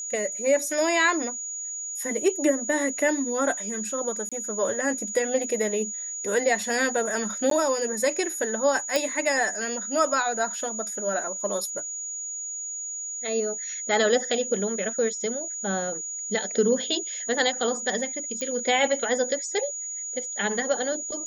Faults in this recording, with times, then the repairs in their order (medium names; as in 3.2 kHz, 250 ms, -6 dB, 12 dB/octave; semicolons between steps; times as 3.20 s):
whine 6.8 kHz -31 dBFS
4.29–4.32 s: dropout 26 ms
7.50–7.51 s: dropout 13 ms
8.96 s: pop
18.41 s: pop -17 dBFS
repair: de-click; band-stop 6.8 kHz, Q 30; interpolate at 4.29 s, 26 ms; interpolate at 7.50 s, 13 ms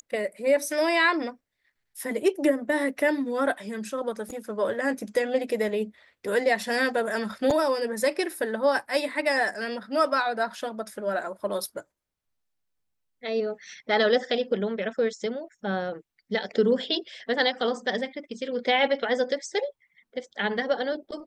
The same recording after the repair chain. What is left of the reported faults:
nothing left